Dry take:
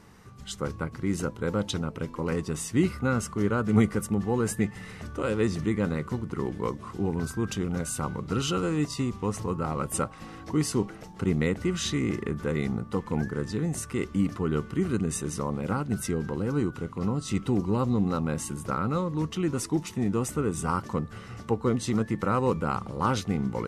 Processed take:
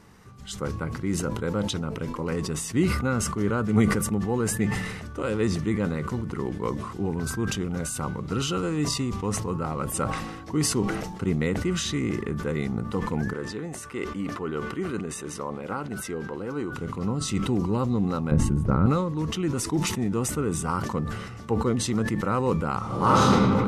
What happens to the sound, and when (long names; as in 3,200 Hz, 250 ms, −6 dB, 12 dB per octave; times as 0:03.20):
0:13.33–0:16.73: bass and treble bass −11 dB, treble −6 dB
0:18.31–0:18.86: spectral tilt −4 dB per octave
0:22.78–0:23.35: thrown reverb, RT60 1.8 s, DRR −8.5 dB
whole clip: level that may fall only so fast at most 43 dB per second